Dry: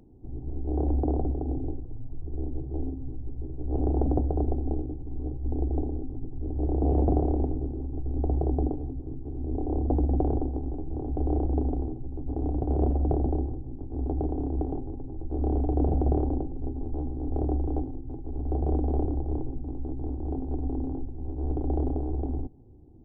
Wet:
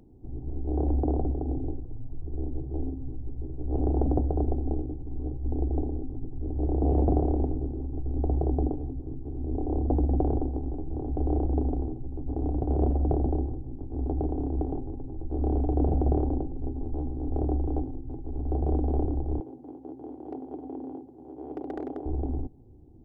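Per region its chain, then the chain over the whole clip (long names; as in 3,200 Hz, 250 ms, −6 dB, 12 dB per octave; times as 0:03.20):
0:19.40–0:22.06: high-pass filter 320 Hz + hard clipping −26 dBFS
whole clip: no processing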